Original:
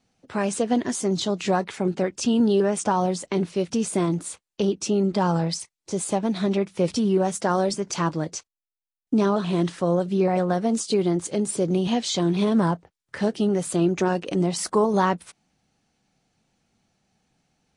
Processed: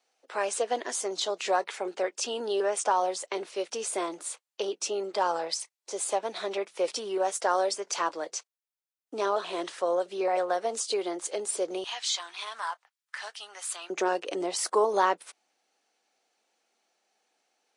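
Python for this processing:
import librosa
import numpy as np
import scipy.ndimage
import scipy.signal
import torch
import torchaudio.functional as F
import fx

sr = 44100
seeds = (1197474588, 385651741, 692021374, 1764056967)

y = fx.highpass(x, sr, hz=fx.steps((0.0, 450.0), (11.84, 1000.0), (13.9, 390.0)), slope=24)
y = y * 10.0 ** (-1.5 / 20.0)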